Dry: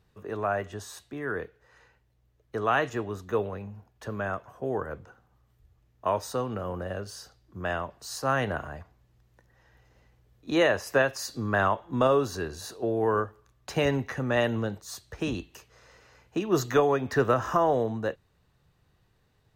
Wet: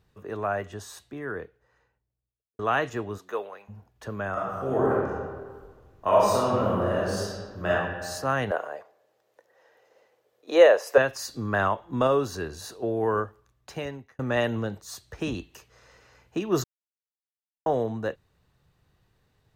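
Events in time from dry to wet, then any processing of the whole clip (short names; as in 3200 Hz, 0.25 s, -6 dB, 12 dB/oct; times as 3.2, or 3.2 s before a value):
0.91–2.59 studio fade out
3.17–3.68 HPF 370 Hz -> 880 Hz
4.32–7.7 reverb throw, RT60 1.6 s, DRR -7.5 dB
8.51–10.98 resonant high-pass 500 Hz, resonance Q 3.2
13.23–14.19 fade out
16.64–17.66 mute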